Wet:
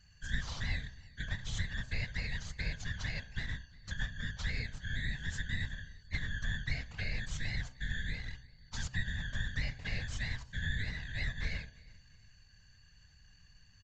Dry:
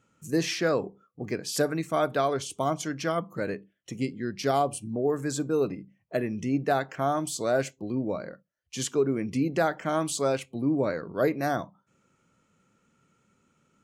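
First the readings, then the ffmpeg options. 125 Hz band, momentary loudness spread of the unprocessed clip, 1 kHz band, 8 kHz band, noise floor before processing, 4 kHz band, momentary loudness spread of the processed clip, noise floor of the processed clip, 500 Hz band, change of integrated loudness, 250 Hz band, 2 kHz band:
-3.0 dB, 8 LU, -26.0 dB, -14.0 dB, -72 dBFS, -4.0 dB, 5 LU, -62 dBFS, -31.0 dB, -11.0 dB, -19.5 dB, -1.5 dB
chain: -af "afftfilt=real='real(if(lt(b,272),68*(eq(floor(b/68),0)*1+eq(floor(b/68),1)*0+eq(floor(b/68),2)*3+eq(floor(b/68),3)*2)+mod(b,68),b),0)':imag='imag(if(lt(b,272),68*(eq(floor(b/68),0)*1+eq(floor(b/68),1)*0+eq(floor(b/68),2)*3+eq(floor(b/68),3)*2)+mod(b,68),b),0)':win_size=2048:overlap=0.75,acompressor=threshold=0.0126:ratio=4,aeval=exprs='val(0)+0.000708*sin(2*PI*4500*n/s)':c=same,aeval=exprs='max(val(0),0)':c=same,acontrast=31,lowshelf=f=120:g=11,aecho=1:1:348|696:0.0631|0.0189,aresample=16000,aresample=44100,afftfilt=real='hypot(re,im)*cos(2*PI*random(0))':imag='hypot(re,im)*sin(2*PI*random(1))':win_size=512:overlap=0.75,equalizer=f=350:t=o:w=0.46:g=-11.5,bandreject=f=64.14:t=h:w=4,bandreject=f=128.28:t=h:w=4,bandreject=f=192.42:t=h:w=4,bandreject=f=256.56:t=h:w=4,bandreject=f=320.7:t=h:w=4,bandreject=f=384.84:t=h:w=4,bandreject=f=448.98:t=h:w=4,bandreject=f=513.12:t=h:w=4,bandreject=f=577.26:t=h:w=4,bandreject=f=641.4:t=h:w=4,bandreject=f=705.54:t=h:w=4,bandreject=f=769.68:t=h:w=4,bandreject=f=833.82:t=h:w=4,bandreject=f=897.96:t=h:w=4,bandreject=f=962.1:t=h:w=4,bandreject=f=1026.24:t=h:w=4,bandreject=f=1090.38:t=h:w=4,bandreject=f=1154.52:t=h:w=4,bandreject=f=1218.66:t=h:w=4,volume=1.26"

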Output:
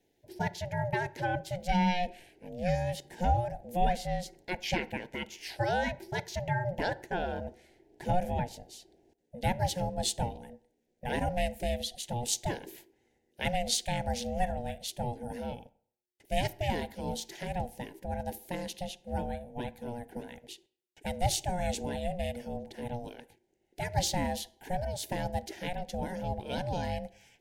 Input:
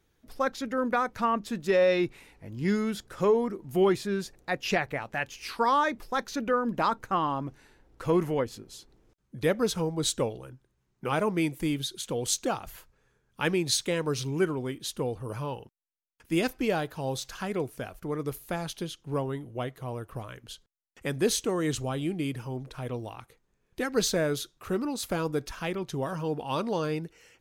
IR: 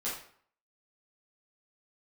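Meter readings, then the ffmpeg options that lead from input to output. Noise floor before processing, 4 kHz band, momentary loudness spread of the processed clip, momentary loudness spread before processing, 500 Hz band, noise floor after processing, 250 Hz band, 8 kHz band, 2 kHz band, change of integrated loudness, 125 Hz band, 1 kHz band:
-74 dBFS, -2.5 dB, 12 LU, 12 LU, -7.0 dB, -76 dBFS, -6.5 dB, -3.0 dB, -4.0 dB, -4.5 dB, -0.5 dB, -2.0 dB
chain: -filter_complex "[0:a]aeval=exprs='val(0)*sin(2*PI*360*n/s)':c=same,asuperstop=centerf=1200:order=4:qfactor=1.6,asplit=2[s0][s1];[1:a]atrim=start_sample=2205,highshelf=f=2500:g=-9.5,adelay=30[s2];[s1][s2]afir=irnorm=-1:irlink=0,volume=0.0944[s3];[s0][s3]amix=inputs=2:normalize=0"

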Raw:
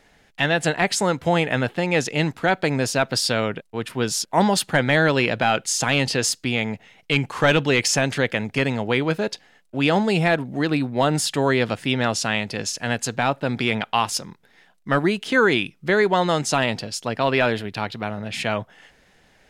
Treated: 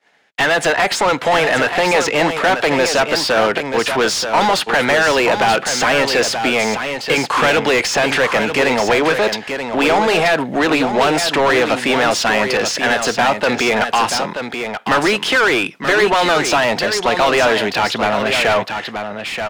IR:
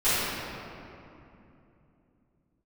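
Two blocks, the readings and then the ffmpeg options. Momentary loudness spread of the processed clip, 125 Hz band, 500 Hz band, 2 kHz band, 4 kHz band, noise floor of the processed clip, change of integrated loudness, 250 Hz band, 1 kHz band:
5 LU, -4.5 dB, +7.0 dB, +8.0 dB, +7.0 dB, -30 dBFS, +6.5 dB, +2.5 dB, +8.5 dB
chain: -filter_complex "[0:a]highpass=f=160:p=1,acrossover=split=340|1900|5400[s0][s1][s2][s3];[s0]acompressor=threshold=0.0224:ratio=4[s4];[s1]acompressor=threshold=0.0794:ratio=4[s5];[s2]acompressor=threshold=0.0251:ratio=4[s6];[s3]acompressor=threshold=0.0126:ratio=4[s7];[s4][s5][s6][s7]amix=inputs=4:normalize=0,agate=range=0.0224:threshold=0.00562:ratio=3:detection=peak,asplit=2[s8][s9];[s9]highpass=f=720:p=1,volume=20,asoftclip=type=tanh:threshold=0.376[s10];[s8][s10]amix=inputs=2:normalize=0,lowpass=f=3000:p=1,volume=0.501,asplit=2[s11][s12];[s12]aecho=0:1:931:0.422[s13];[s11][s13]amix=inputs=2:normalize=0,volume=1.33"

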